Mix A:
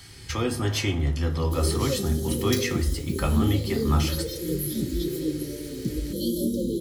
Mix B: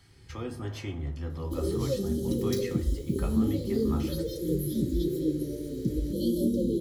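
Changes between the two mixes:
speech −9.5 dB
first sound −8.0 dB
master: add high-shelf EQ 2,200 Hz −9 dB

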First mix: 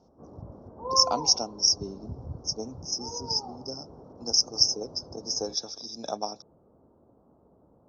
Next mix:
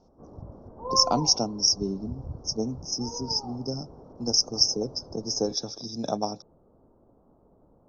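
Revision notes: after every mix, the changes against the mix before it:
speech: remove high-pass filter 720 Hz 6 dB per octave
master: remove high-pass filter 61 Hz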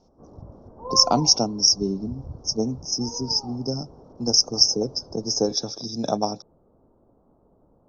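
speech +4.5 dB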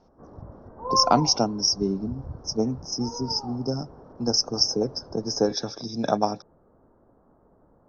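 speech: add high-frequency loss of the air 120 metres
master: add parametric band 1,800 Hz +14 dB 1 octave

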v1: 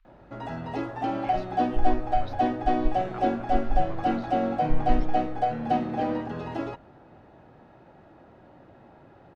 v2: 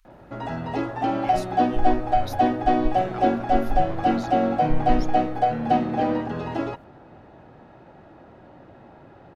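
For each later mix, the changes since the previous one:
speech: remove high-frequency loss of the air 320 metres
background +4.5 dB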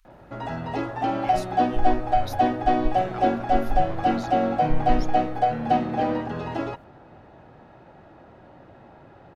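master: add parametric band 280 Hz −2.5 dB 1.4 octaves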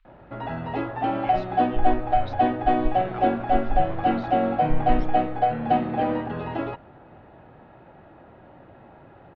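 master: add low-pass filter 3,500 Hz 24 dB per octave

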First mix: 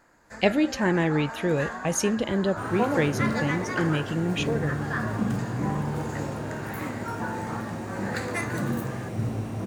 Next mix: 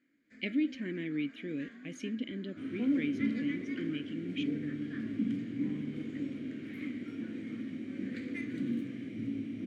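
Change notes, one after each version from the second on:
second sound +4.5 dB
master: add formant filter i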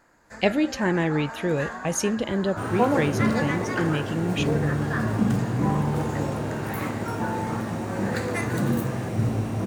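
master: remove formant filter i

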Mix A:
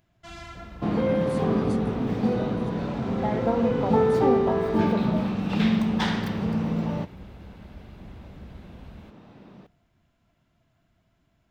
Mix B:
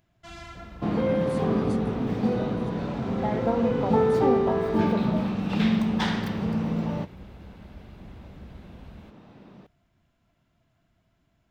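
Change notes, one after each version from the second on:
reverb: off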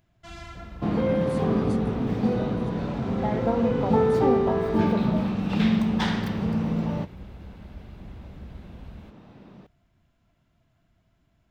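master: add low-shelf EQ 110 Hz +5 dB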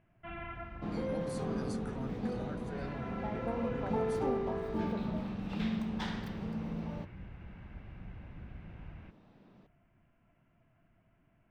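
first sound: add Butterworth low-pass 2,800 Hz 48 dB per octave
second sound −12.0 dB
master: add parametric band 61 Hz −9 dB 1.1 octaves

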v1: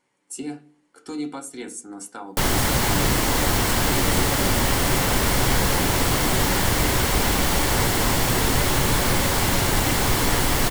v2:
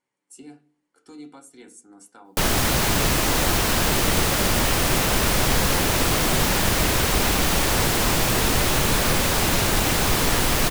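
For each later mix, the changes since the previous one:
speech −11.5 dB
background: send off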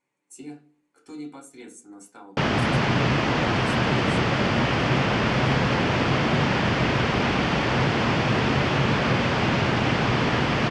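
speech: send +6.0 dB
background: add loudspeaker in its box 100–4,100 Hz, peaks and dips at 130 Hz +8 dB, 230 Hz +4 dB, 3,900 Hz −8 dB

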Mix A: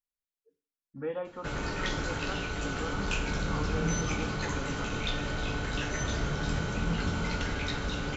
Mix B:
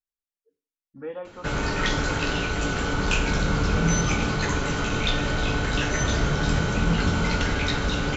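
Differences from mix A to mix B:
speech: add parametric band 150 Hz −6 dB 0.39 octaves
background +8.0 dB

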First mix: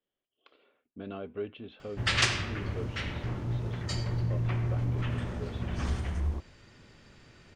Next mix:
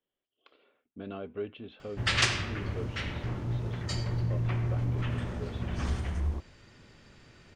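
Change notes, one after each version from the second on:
nothing changed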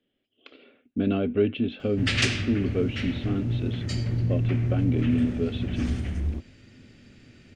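speech +11.0 dB
master: add graphic EQ with 15 bands 100 Hz +6 dB, 250 Hz +11 dB, 1,000 Hz −10 dB, 2,500 Hz +4 dB

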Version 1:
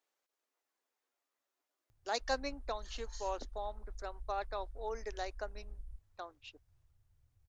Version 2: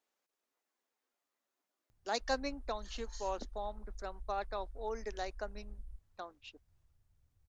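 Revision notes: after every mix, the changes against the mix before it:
background: add parametric band 130 Hz −7.5 dB 1.1 octaves
master: add parametric band 180 Hz +14 dB 0.64 octaves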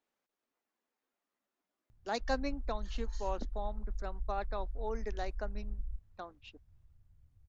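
master: add bass and treble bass +9 dB, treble −6 dB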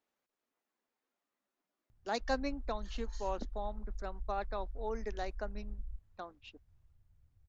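background −3.5 dB

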